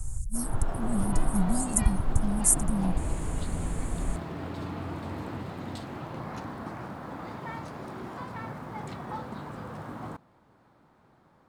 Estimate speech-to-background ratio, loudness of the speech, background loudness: 8.0 dB, −29.5 LKFS, −37.5 LKFS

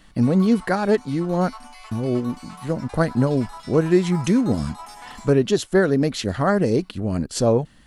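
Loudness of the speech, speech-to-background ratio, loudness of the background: −21.5 LKFS, 19.5 dB, −41.0 LKFS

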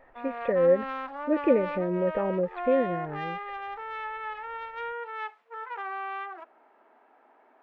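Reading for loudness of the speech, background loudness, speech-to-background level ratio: −27.0 LKFS, −36.0 LKFS, 9.0 dB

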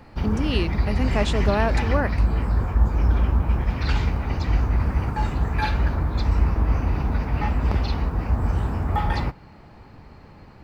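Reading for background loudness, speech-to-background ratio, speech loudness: −24.0 LKFS, −2.5 dB, −26.5 LKFS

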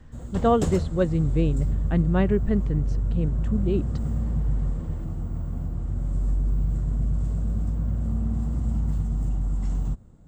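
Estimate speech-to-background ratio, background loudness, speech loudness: 2.0 dB, −28.0 LKFS, −26.0 LKFS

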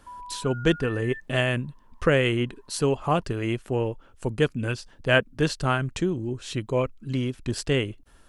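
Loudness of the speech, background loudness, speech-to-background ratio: −26.5 LKFS, −40.0 LKFS, 13.5 dB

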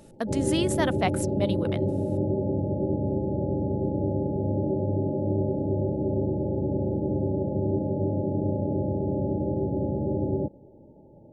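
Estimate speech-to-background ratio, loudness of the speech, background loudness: −2.0 dB, −29.5 LKFS, −27.5 LKFS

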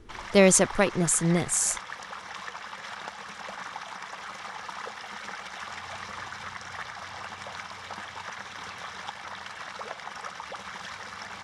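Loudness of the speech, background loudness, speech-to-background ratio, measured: −22.5 LKFS, −38.5 LKFS, 16.0 dB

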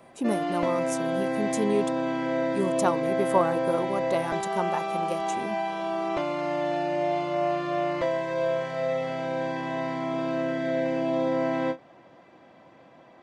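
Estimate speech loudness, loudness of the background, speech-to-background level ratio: −30.5 LKFS, −28.0 LKFS, −2.5 dB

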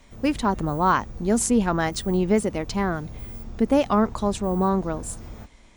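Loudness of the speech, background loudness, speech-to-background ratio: −23.5 LKFS, −40.0 LKFS, 16.5 dB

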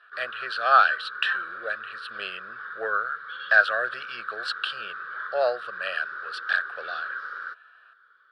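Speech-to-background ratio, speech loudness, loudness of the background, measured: 9.5 dB, −26.0 LKFS, −35.5 LKFS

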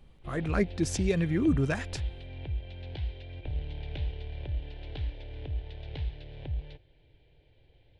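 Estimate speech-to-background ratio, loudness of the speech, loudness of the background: 9.0 dB, −29.5 LKFS, −38.5 LKFS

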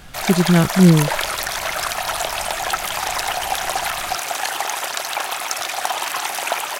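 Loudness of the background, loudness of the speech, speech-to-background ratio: −22.5 LKFS, −15.5 LKFS, 7.0 dB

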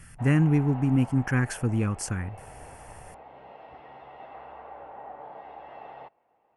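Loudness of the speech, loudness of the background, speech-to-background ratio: −25.0 LKFS, −45.0 LKFS, 20.0 dB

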